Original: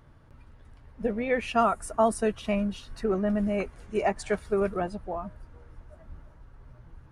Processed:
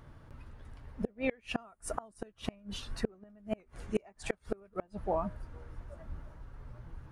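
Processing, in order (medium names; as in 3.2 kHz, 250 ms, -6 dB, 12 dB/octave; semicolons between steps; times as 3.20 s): inverted gate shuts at -20 dBFS, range -33 dB; warped record 78 rpm, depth 100 cents; trim +2 dB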